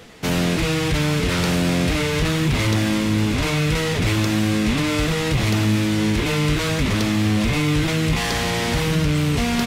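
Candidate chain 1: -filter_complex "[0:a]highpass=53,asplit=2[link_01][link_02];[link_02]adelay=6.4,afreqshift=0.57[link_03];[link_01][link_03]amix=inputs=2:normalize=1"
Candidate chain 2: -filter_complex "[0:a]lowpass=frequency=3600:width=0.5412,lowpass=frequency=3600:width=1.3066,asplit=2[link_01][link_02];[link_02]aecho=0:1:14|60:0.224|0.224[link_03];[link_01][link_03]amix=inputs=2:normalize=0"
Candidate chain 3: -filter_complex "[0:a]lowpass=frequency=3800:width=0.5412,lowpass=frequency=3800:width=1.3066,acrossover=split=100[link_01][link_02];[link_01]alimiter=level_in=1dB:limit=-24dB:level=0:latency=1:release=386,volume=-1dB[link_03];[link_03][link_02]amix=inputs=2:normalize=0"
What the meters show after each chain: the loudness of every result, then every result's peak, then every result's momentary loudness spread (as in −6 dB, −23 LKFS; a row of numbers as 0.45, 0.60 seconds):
−23.5, −20.0, −20.5 LKFS; −11.0, −9.5, −8.0 dBFS; 3, 3, 2 LU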